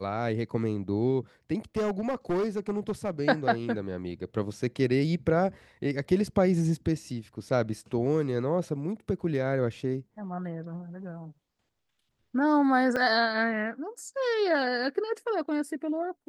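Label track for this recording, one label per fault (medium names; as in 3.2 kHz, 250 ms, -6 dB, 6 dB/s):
1.760000	3.100000	clipped -24 dBFS
12.960000	12.970000	dropout 5.9 ms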